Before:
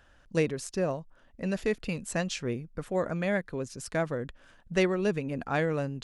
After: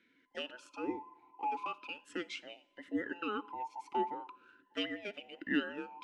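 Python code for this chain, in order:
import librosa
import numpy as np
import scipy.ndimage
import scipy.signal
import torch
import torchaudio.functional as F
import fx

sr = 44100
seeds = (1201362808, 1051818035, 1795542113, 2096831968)

y = fx.band_invert(x, sr, width_hz=1000)
y = fx.rev_double_slope(y, sr, seeds[0], early_s=0.72, late_s=3.1, knee_db=-18, drr_db=18.0)
y = fx.vowel_sweep(y, sr, vowels='i-u', hz=0.39)
y = y * librosa.db_to_amplitude(8.0)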